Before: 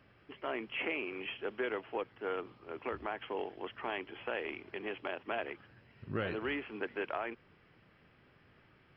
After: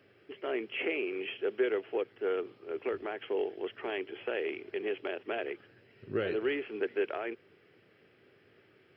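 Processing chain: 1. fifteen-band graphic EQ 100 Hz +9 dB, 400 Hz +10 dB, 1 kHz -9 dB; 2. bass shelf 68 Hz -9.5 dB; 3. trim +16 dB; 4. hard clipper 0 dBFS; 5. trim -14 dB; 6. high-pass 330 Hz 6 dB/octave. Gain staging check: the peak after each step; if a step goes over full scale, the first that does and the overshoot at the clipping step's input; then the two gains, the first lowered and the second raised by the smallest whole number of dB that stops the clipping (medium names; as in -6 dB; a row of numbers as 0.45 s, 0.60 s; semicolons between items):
-17.5 dBFS, -18.0 dBFS, -2.0 dBFS, -2.0 dBFS, -16.0 dBFS, -19.0 dBFS; nothing clips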